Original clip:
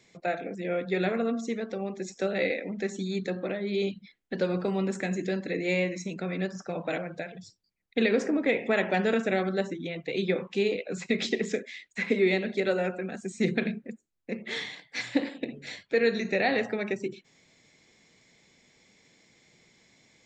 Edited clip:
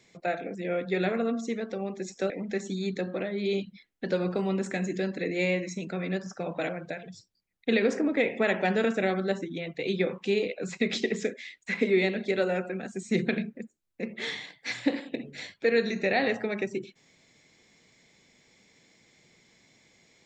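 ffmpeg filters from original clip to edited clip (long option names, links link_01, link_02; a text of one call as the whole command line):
ffmpeg -i in.wav -filter_complex "[0:a]asplit=2[link_01][link_02];[link_01]atrim=end=2.302[link_03];[link_02]atrim=start=2.588[link_04];[link_03][link_04]acrossfade=duration=0.004:curve1=hsin:curve2=hsin" out.wav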